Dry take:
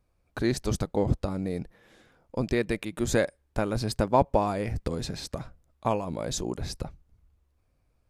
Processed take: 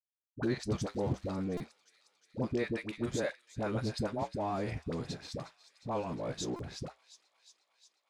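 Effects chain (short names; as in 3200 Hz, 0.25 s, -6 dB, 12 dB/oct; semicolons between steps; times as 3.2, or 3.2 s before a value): HPF 93 Hz 12 dB/oct; limiter -17.5 dBFS, peak gain reduction 9.5 dB; 4.09–4.57 notch comb 490 Hz; crossover distortion -47 dBFS; flange 0.63 Hz, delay 6.3 ms, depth 2.8 ms, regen -71%; dispersion highs, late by 66 ms, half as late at 660 Hz; 0.74–1.34 crackle 520/s -47 dBFS; air absorption 63 m; on a send: thin delay 0.358 s, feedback 72%, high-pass 2700 Hz, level -14 dB; on the sum: stuck buffer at 1.57/6.56, samples 128, times 10; gain +1 dB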